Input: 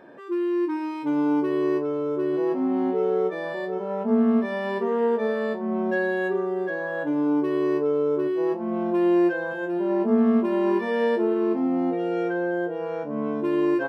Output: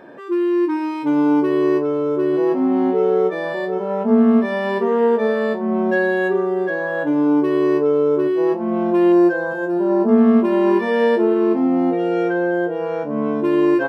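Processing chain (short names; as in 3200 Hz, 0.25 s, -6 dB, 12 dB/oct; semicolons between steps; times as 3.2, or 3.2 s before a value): 9.12–10.09 band shelf 2600 Hz -9.5 dB 1.1 oct; gain +6.5 dB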